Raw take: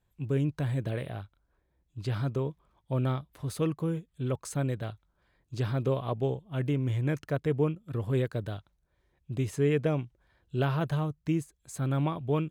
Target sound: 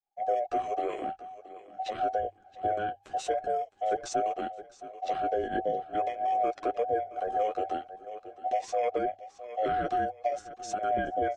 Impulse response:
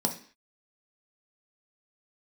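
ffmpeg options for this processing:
-af "afftfilt=real='real(if(between(b,1,1008),(2*floor((b-1)/48)+1)*48-b,b),0)':imag='imag(if(between(b,1,1008),(2*floor((b-1)/48)+1)*48-b,b),0)*if(between(b,1,1008),-1,1)':win_size=2048:overlap=0.75,atempo=1.1,aecho=1:1:669|1338:0.119|0.0321,agate=range=0.0224:threshold=0.00112:ratio=3:detection=peak,acompressor=threshold=0.0282:ratio=2.5,flanger=delay=6.4:depth=4.6:regen=-20:speed=0.47:shape=triangular,equalizer=f=440:w=4.8:g=4.5,bandreject=f=60:t=h:w=6,bandreject=f=120:t=h:w=6,asetrate=36028,aresample=44100,atempo=1.22405,lowpass=f=7400:w=0.5412,lowpass=f=7400:w=1.3066,volume=2.11"

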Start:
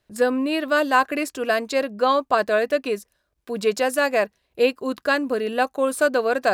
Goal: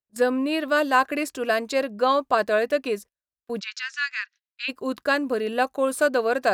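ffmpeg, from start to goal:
-filter_complex "[0:a]agate=range=0.0398:threshold=0.0141:ratio=16:detection=peak,asplit=3[s0][s1][s2];[s0]afade=t=out:st=3.59:d=0.02[s3];[s1]asuperpass=centerf=3000:order=12:qfactor=0.58,afade=t=in:st=3.59:d=0.02,afade=t=out:st=4.68:d=0.02[s4];[s2]afade=t=in:st=4.68:d=0.02[s5];[s3][s4][s5]amix=inputs=3:normalize=0,volume=0.841"

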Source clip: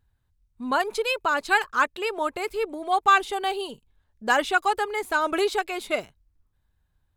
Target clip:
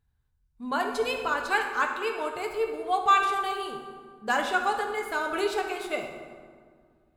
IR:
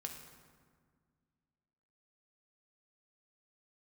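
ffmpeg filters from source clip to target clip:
-filter_complex "[1:a]atrim=start_sample=2205,asetrate=41895,aresample=44100[s0];[0:a][s0]afir=irnorm=-1:irlink=0,asettb=1/sr,asplit=3[s1][s2][s3];[s1]atrim=end=0.984[s4];[s2]atrim=start=0.98:end=1.47,asetpts=PTS-STARTPTS,afade=t=in:d=0.004:c=qsin,afade=t=out:st=0.486:d=0.004:c=qsin,aeval=exprs='val(0)+0.00224*(sin(2*PI*50*n/s)+sin(2*PI*2*50*n/s)/2+sin(2*PI*3*50*n/s)/3+sin(2*PI*4*50*n/s)/4+sin(2*PI*5*50*n/s)/5)':c=same[s5];[s3]atrim=start=1.466[s6];[s4][s5]acrossfade=d=0.004:c1=hsin:c2=qsin[s7];[s7][s6]acrossfade=d=0.004:c1=qsin:c2=hsin,volume=0.841"

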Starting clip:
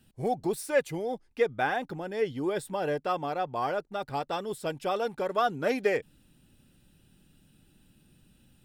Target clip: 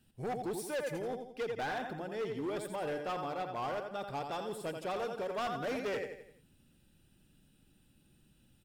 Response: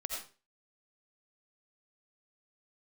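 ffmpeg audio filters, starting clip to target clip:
-af "aecho=1:1:85|170|255|340|425:0.447|0.201|0.0905|0.0407|0.0183,asoftclip=type=hard:threshold=0.0473,volume=0.501"

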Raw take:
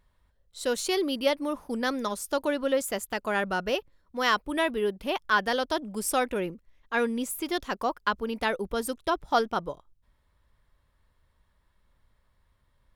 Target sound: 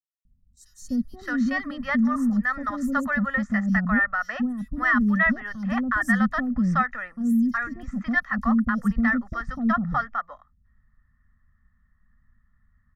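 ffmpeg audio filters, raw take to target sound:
-filter_complex "[0:a]aemphasis=mode=reproduction:type=75fm,agate=range=0.355:threshold=0.00251:ratio=16:detection=peak,firequalizer=gain_entry='entry(130,0);entry(240,12);entry(390,-27);entry(850,-8);entry(1800,7);entry(2500,-17);entry(3700,-18);entry(6100,-5);entry(9700,-14);entry(14000,-6)':delay=0.05:min_phase=1,alimiter=limit=0.0794:level=0:latency=1:release=74,aecho=1:1:1.6:0.71,acrossover=split=500|5500[s0][s1][s2];[s0]adelay=250[s3];[s1]adelay=620[s4];[s3][s4][s2]amix=inputs=3:normalize=0,volume=2.82"

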